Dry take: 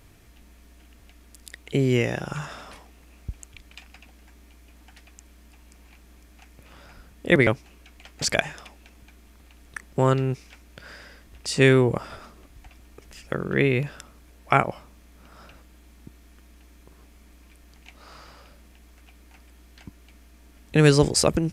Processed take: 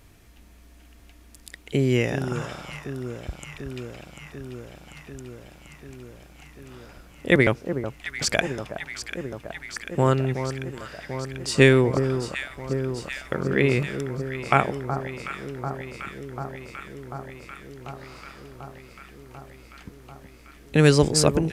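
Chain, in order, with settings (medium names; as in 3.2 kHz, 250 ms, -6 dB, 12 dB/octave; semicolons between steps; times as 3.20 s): 11.47–12.03 s: transient shaper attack +4 dB, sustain -3 dB; echo whose repeats swap between lows and highs 371 ms, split 1.3 kHz, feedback 86%, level -9 dB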